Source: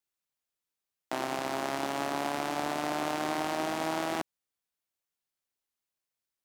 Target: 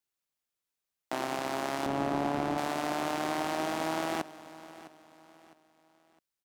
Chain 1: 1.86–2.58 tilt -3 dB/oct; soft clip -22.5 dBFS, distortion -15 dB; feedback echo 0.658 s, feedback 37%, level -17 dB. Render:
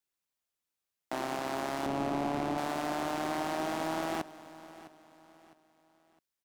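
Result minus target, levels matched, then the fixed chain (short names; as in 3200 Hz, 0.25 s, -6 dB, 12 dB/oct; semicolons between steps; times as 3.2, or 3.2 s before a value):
soft clip: distortion +15 dB
1.86–2.58 tilt -3 dB/oct; soft clip -13 dBFS, distortion -30 dB; feedback echo 0.658 s, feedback 37%, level -17 dB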